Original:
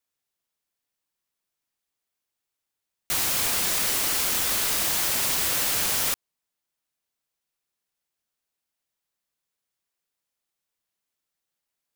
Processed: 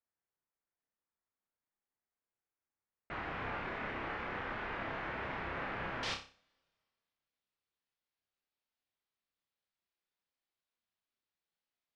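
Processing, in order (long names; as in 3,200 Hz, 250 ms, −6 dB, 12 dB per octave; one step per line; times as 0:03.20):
low-pass filter 2,000 Hz 24 dB per octave, from 0:06.03 4,600 Hz
flutter between parallel walls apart 5.2 metres, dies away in 0.35 s
coupled-rooms reverb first 0.45 s, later 2.2 s, from −20 dB, DRR 19 dB
level −7 dB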